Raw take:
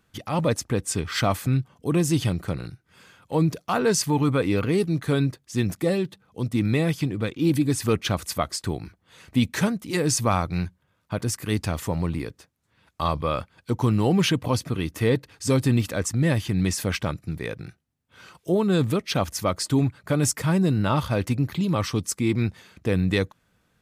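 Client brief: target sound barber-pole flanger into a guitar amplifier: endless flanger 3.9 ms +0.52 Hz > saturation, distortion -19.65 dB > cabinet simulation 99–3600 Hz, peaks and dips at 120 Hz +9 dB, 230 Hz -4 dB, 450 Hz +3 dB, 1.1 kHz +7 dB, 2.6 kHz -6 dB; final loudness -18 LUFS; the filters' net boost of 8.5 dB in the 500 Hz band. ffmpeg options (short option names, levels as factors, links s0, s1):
-filter_complex "[0:a]equalizer=f=500:t=o:g=8,asplit=2[s0][s1];[s1]adelay=3.9,afreqshift=0.52[s2];[s0][s2]amix=inputs=2:normalize=1,asoftclip=threshold=0.266,highpass=99,equalizer=f=120:t=q:w=4:g=9,equalizer=f=230:t=q:w=4:g=-4,equalizer=f=450:t=q:w=4:g=3,equalizer=f=1100:t=q:w=4:g=7,equalizer=f=2600:t=q:w=4:g=-6,lowpass=f=3600:w=0.5412,lowpass=f=3600:w=1.3066,volume=2.11"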